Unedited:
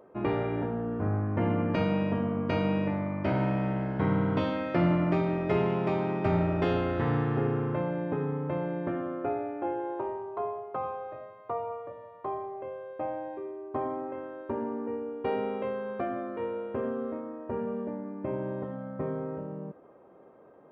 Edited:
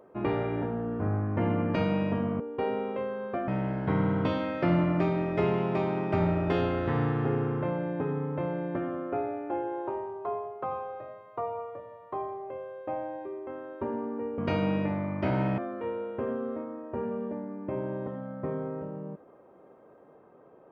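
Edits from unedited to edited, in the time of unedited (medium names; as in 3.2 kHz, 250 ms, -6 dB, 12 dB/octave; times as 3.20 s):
2.40–3.60 s: swap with 15.06–16.14 s
13.59–14.15 s: delete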